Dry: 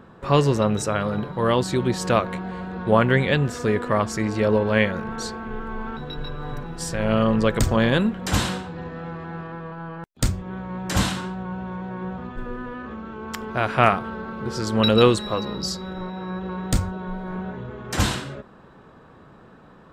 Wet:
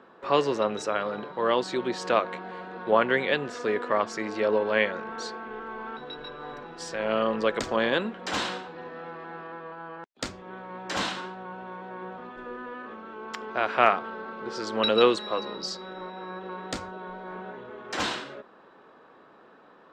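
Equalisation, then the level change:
three-way crossover with the lows and the highs turned down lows −24 dB, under 270 Hz, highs −22 dB, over 6,300 Hz
−2.5 dB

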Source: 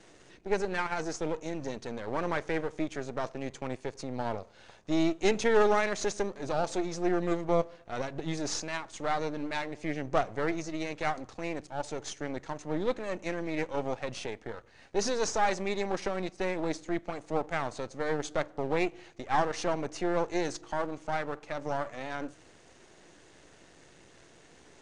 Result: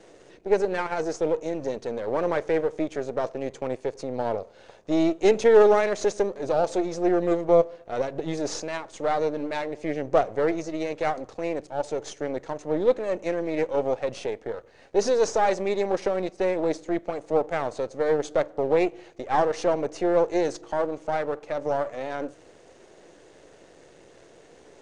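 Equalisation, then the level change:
parametric band 500 Hz +10.5 dB 1.2 octaves
0.0 dB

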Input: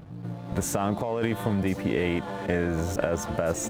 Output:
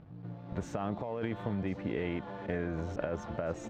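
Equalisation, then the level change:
high-frequency loss of the air 190 metres
high-shelf EQ 12,000 Hz +4 dB
−8.0 dB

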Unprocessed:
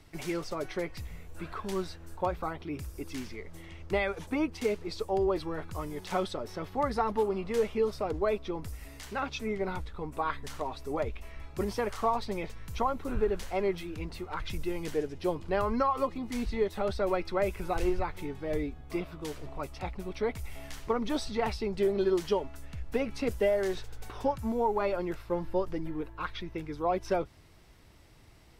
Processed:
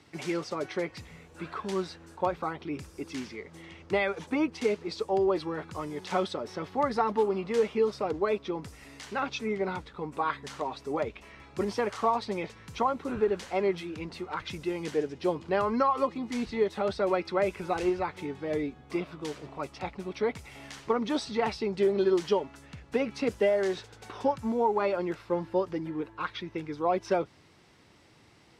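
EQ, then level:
band-pass filter 140–7,600 Hz
notch filter 650 Hz, Q 15
+2.5 dB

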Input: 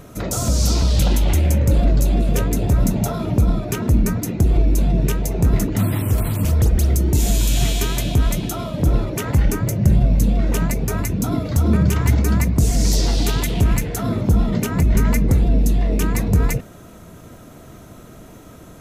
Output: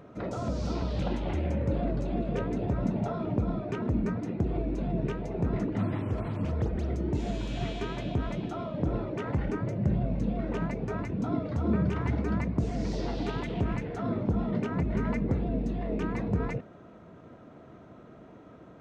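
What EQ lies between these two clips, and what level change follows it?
high-pass filter 270 Hz 6 dB per octave
head-to-tape spacing loss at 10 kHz 38 dB
−3.5 dB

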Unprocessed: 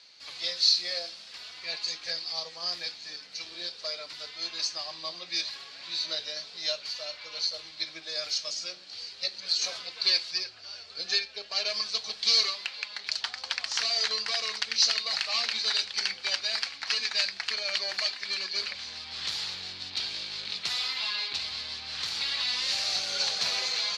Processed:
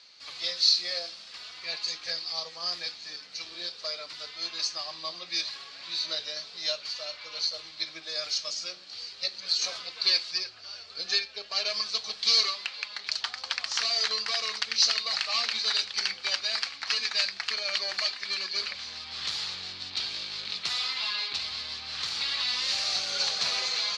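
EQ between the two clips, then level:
high-frequency loss of the air 64 metres
parametric band 1,200 Hz +4.5 dB 0.26 octaves
high-shelf EQ 6,700 Hz +9.5 dB
0.0 dB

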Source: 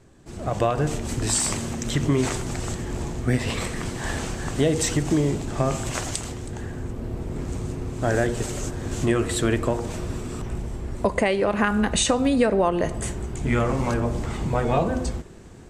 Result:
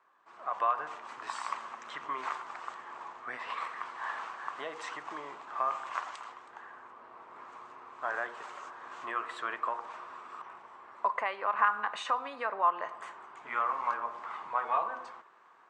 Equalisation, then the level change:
four-pole ladder band-pass 1,200 Hz, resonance 65%
+5.0 dB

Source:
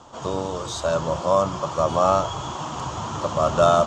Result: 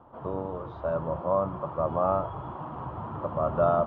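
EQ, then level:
low-pass filter 1,400 Hz 12 dB per octave
high-frequency loss of the air 320 metres
−5.0 dB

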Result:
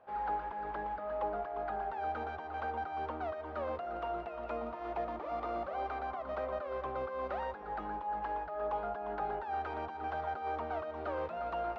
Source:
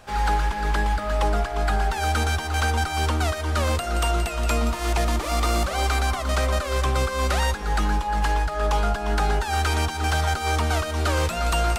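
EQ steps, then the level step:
resonant band-pass 650 Hz, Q 1.2
high-frequency loss of the air 230 metres
−7.5 dB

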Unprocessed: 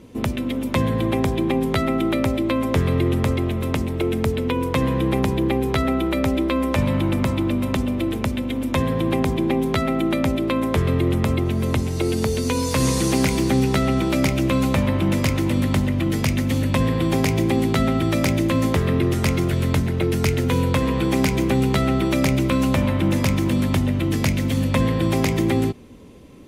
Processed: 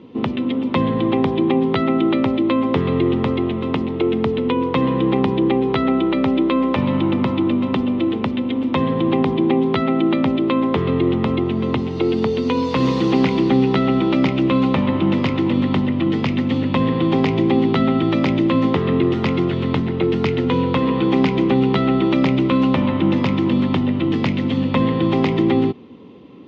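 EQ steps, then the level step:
loudspeaker in its box 180–3,400 Hz, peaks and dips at 610 Hz −8 dB, 1,600 Hz −9 dB, 2,300 Hz −6 dB
+5.5 dB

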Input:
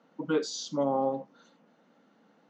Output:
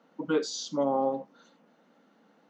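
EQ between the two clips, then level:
parametric band 110 Hz −12.5 dB 0.5 octaves
+1.0 dB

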